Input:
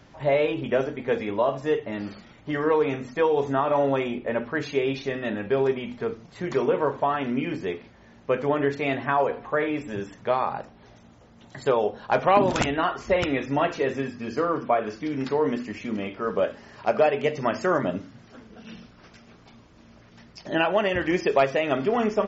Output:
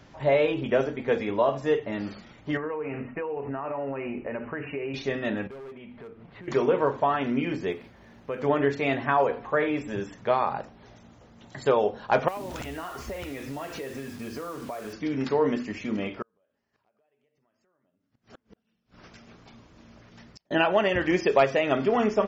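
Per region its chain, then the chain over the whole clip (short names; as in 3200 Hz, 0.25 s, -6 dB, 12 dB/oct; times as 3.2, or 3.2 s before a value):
2.57–4.94 compressor 10:1, threshold -28 dBFS + brick-wall FIR low-pass 3000 Hz
5.47–6.48 LPF 3000 Hz 24 dB/oct + overloaded stage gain 23.5 dB + compressor, threshold -42 dBFS
7.72–8.42 median filter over 5 samples + compressor 2:1, threshold -34 dBFS
12.28–14.93 bell 68 Hz +12 dB 0.48 oct + compressor 8:1, threshold -32 dBFS + requantised 8-bit, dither none
16.22–20.51 compressor 10:1, threshold -36 dBFS + flipped gate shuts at -37 dBFS, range -33 dB
whole clip: dry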